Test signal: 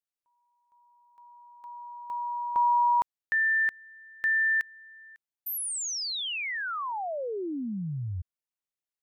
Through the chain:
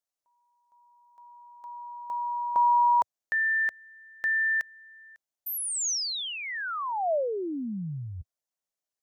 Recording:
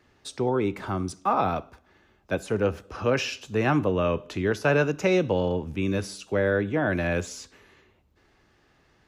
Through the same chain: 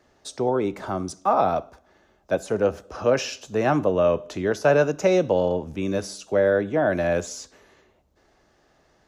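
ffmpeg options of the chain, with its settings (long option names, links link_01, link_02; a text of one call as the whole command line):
ffmpeg -i in.wav -af "equalizer=frequency=100:width_type=o:width=0.67:gain=-5,equalizer=frequency=630:width_type=o:width=0.67:gain=8,equalizer=frequency=2500:width_type=o:width=0.67:gain=-4,equalizer=frequency=6300:width_type=o:width=0.67:gain=5" out.wav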